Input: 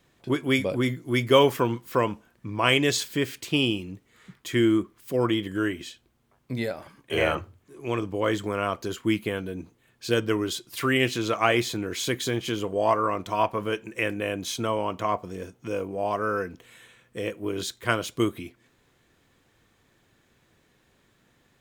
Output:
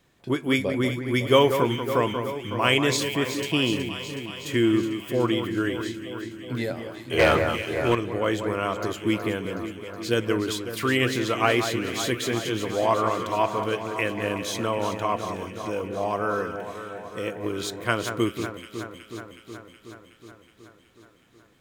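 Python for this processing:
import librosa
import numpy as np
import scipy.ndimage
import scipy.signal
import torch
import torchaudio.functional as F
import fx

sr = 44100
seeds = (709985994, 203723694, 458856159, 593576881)

p1 = x + fx.echo_alternate(x, sr, ms=185, hz=2100.0, feedback_pct=83, wet_db=-8, dry=0)
y = fx.leveller(p1, sr, passes=2, at=(7.19, 7.95))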